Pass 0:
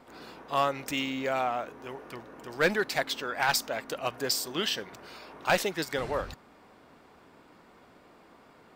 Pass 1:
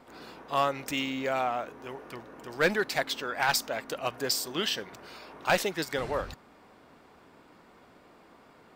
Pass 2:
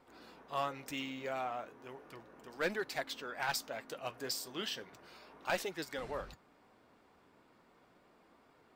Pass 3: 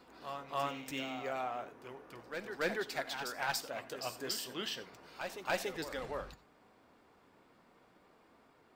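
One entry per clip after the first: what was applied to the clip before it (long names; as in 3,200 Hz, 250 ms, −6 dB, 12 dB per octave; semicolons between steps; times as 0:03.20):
no processing that can be heard
flanger 0.35 Hz, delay 2.1 ms, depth 8.6 ms, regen −61%; level −5.5 dB
backwards echo 285 ms −7.5 dB; on a send at −15.5 dB: convolution reverb, pre-delay 3 ms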